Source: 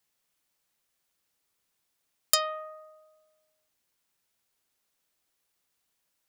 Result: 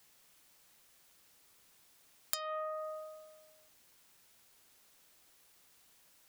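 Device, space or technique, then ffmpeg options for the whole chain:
serial compression, leveller first: -af "acompressor=threshold=-31dB:ratio=3,acompressor=threshold=-49dB:ratio=4,volume=12.5dB"

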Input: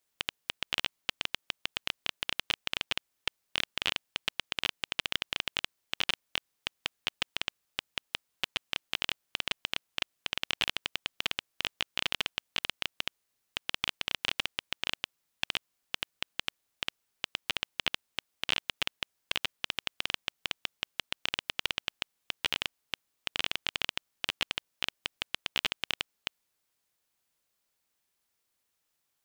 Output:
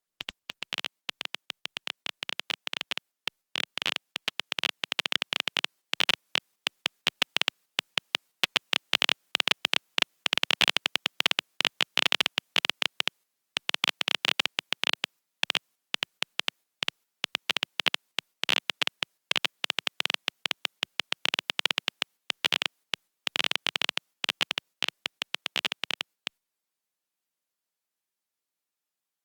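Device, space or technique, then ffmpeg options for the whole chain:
video call: -af "highpass=frequency=150:width=0.5412,highpass=frequency=150:width=1.3066,dynaudnorm=framelen=640:gausssize=17:maxgain=14dB,agate=range=-7dB:threshold=-50dB:ratio=16:detection=peak,volume=-1dB" -ar 48000 -c:a libopus -b:a 32k

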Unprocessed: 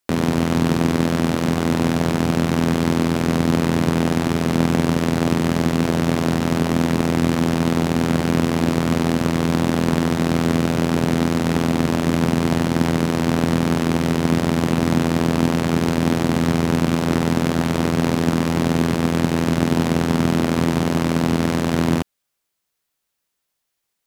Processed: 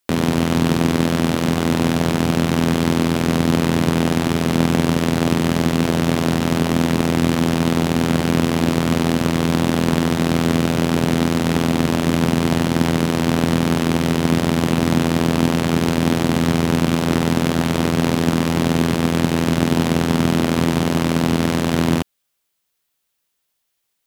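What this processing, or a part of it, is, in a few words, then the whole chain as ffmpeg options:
presence and air boost: -af "equalizer=frequency=3200:width_type=o:width=0.77:gain=3,highshelf=frequency=9600:gain=4.5,volume=1dB"

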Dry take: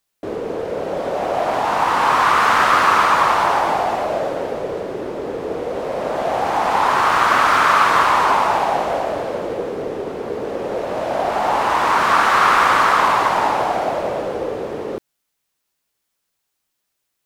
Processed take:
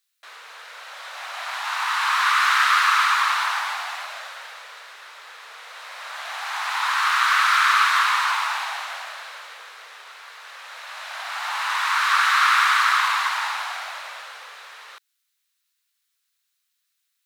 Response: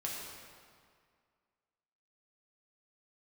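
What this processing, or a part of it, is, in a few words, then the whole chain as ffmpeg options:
headphones lying on a table: -filter_complex "[0:a]highpass=frequency=1300:width=0.5412,highpass=frequency=1300:width=1.3066,equalizer=frequency=3900:width_type=o:width=0.28:gain=5,asettb=1/sr,asplit=3[link_01][link_02][link_03];[link_01]atrim=end=10.204[link_04];[link_02]atrim=start=10.2:end=11.48,asetpts=PTS-STARTPTS,afade=type=in:duration=0.004:curve=qsin,afade=type=out:start_time=1.276:duration=0.004:curve=qsin,highpass=480[link_05];[link_03]atrim=start=11.476[link_06];[link_04][link_05]acrossfade=duration=0.004:curve1=hsin:curve2=qsin[link_07];[link_07][link_06]acrossfade=duration=0.004:curve1=qsin:curve2=hsin"

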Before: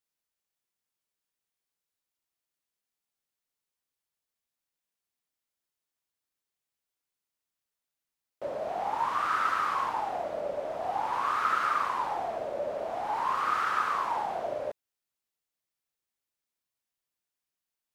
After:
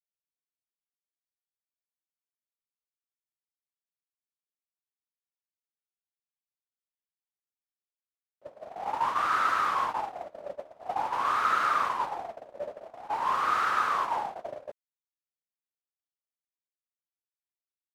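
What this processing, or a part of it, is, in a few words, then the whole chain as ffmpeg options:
parallel distortion: -filter_complex "[0:a]asplit=2[link_01][link_02];[link_02]asoftclip=type=hard:threshold=-29.5dB,volume=-8dB[link_03];[link_01][link_03]amix=inputs=2:normalize=0,agate=range=-27dB:threshold=-28dB:ratio=16:detection=peak"

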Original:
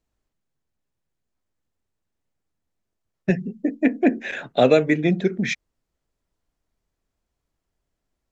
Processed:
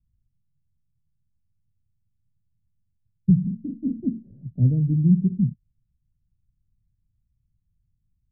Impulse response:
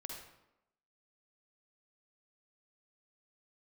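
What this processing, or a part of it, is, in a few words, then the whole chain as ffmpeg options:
the neighbour's flat through the wall: -filter_complex "[0:a]asettb=1/sr,asplit=3[link_01][link_02][link_03];[link_01]atrim=end=3.404[link_04];[link_02]atrim=start=3.4:end=4,asetpts=PTS-STARTPTS,afade=type=in:duration=0.004:curve=qsin,afade=type=out:start_time=0.596:duration=0.004:curve=qsin,asplit=2[link_05][link_06];[link_06]adelay=41,volume=-3dB[link_07];[link_05][link_07]amix=inputs=2:normalize=0,atrim=end_sample=26460[link_08];[link_03]atrim=start=3.996[link_09];[link_04][link_08]acrossfade=duration=0.004:curve1=hsin:curve2=qsin[link_10];[link_10][link_09]acrossfade=duration=0.004:curve1=qsin:curve2=hsin,lowpass=frequency=170:width=0.5412,lowpass=frequency=170:width=1.3066,equalizer=frequency=110:width_type=o:width=0.77:gain=7.5,volume=8dB"

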